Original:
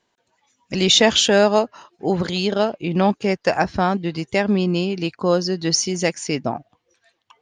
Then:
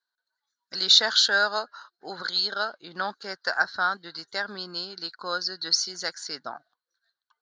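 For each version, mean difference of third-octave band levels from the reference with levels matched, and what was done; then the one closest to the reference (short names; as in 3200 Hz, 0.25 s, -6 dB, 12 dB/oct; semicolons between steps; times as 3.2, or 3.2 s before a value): 8.0 dB: gate -45 dBFS, range -13 dB; double band-pass 2500 Hz, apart 1.5 oct; gain +7 dB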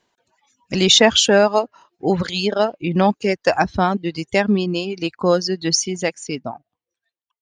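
3.5 dB: ending faded out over 1.90 s; reverb removal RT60 1.4 s; gain +2.5 dB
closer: second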